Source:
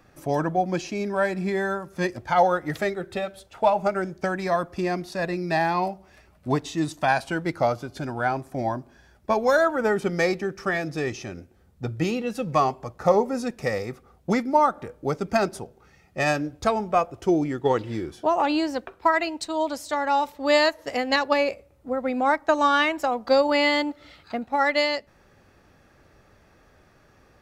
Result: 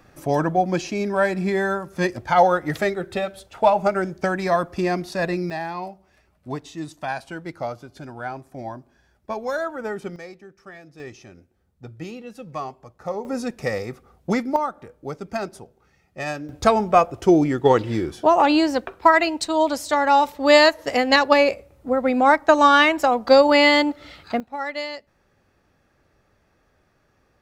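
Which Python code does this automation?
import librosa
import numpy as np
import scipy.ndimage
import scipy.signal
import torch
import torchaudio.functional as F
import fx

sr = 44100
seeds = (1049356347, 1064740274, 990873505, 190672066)

y = fx.gain(x, sr, db=fx.steps((0.0, 3.5), (5.5, -6.5), (10.16, -16.5), (11.0, -9.5), (13.25, 1.0), (14.56, -5.5), (16.49, 6.0), (24.4, -7.0)))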